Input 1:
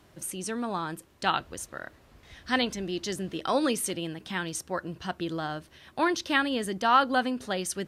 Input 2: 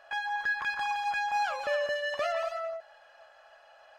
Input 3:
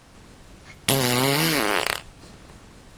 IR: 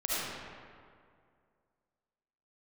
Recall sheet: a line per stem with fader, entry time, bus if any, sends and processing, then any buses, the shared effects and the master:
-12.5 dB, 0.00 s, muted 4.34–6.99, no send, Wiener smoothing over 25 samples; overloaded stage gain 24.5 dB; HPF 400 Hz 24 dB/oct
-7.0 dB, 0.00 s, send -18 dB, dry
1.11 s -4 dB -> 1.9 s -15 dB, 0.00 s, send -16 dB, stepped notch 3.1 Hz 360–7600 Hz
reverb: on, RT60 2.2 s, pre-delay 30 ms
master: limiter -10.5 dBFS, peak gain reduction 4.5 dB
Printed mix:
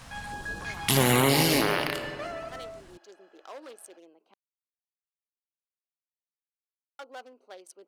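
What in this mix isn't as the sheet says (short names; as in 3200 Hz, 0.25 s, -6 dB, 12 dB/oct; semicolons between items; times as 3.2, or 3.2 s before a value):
stem 2: send off; stem 3 -4.0 dB -> +4.0 dB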